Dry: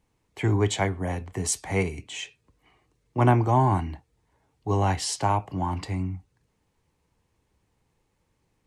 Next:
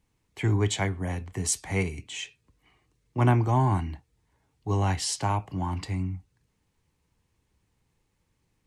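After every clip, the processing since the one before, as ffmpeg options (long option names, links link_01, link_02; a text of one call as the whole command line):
ffmpeg -i in.wav -af "equalizer=frequency=620:width=0.65:gain=-5.5" out.wav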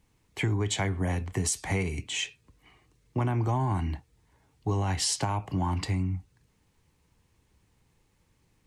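ffmpeg -i in.wav -af "alimiter=limit=-19dB:level=0:latency=1:release=133,acompressor=threshold=-29dB:ratio=6,volume=5dB" out.wav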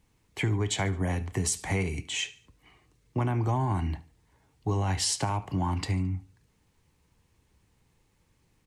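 ffmpeg -i in.wav -af "aecho=1:1:72|144|216:0.106|0.0424|0.0169" out.wav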